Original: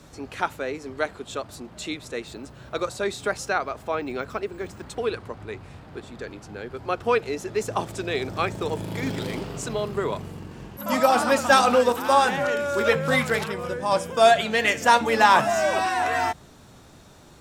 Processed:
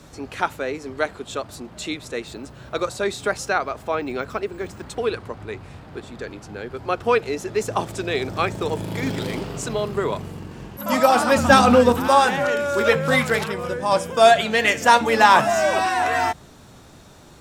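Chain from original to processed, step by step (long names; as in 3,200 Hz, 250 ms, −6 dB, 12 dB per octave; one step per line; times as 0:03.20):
0:11.36–0:12.08: bass and treble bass +14 dB, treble −2 dB
level +3 dB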